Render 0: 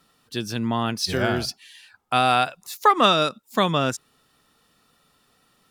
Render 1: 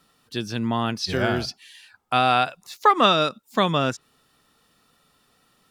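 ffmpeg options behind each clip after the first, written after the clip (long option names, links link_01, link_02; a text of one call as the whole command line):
ffmpeg -i in.wav -filter_complex "[0:a]acrossover=split=6100[link_01][link_02];[link_02]acompressor=threshold=-49dB:ratio=4:attack=1:release=60[link_03];[link_01][link_03]amix=inputs=2:normalize=0" out.wav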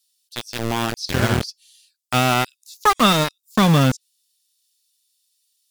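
ffmpeg -i in.wav -filter_complex "[0:a]asubboost=boost=8:cutoff=180,acrossover=split=4000[link_01][link_02];[link_01]aeval=exprs='val(0)*gte(abs(val(0)),0.119)':channel_layout=same[link_03];[link_03][link_02]amix=inputs=2:normalize=0,volume=2dB" out.wav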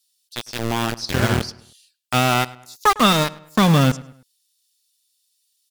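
ffmpeg -i in.wav -filter_complex "[0:a]asplit=2[link_01][link_02];[link_02]adelay=104,lowpass=frequency=3600:poles=1,volume=-19.5dB,asplit=2[link_03][link_04];[link_04]adelay=104,lowpass=frequency=3600:poles=1,volume=0.41,asplit=2[link_05][link_06];[link_06]adelay=104,lowpass=frequency=3600:poles=1,volume=0.41[link_07];[link_01][link_03][link_05][link_07]amix=inputs=4:normalize=0" out.wav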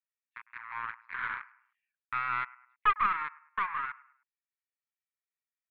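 ffmpeg -i in.wav -af "asuperpass=centerf=1500:order=12:qfactor=1.1,aeval=exprs='0.422*(cos(1*acos(clip(val(0)/0.422,-1,1)))-cos(1*PI/2))+0.0944*(cos(2*acos(clip(val(0)/0.422,-1,1)))-cos(2*PI/2))':channel_layout=same,volume=-8dB" out.wav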